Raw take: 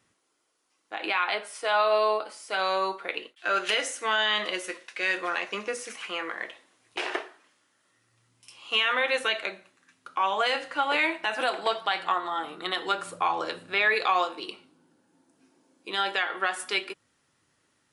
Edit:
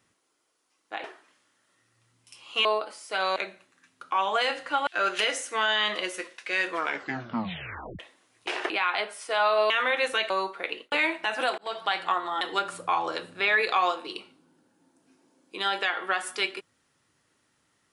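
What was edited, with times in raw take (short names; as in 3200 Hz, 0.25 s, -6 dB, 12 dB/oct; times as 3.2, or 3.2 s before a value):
1.04–2.04 swap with 7.2–8.81
2.75–3.37 swap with 9.41–10.92
5.2 tape stop 1.29 s
11.58–11.84 fade in
12.41–12.74 cut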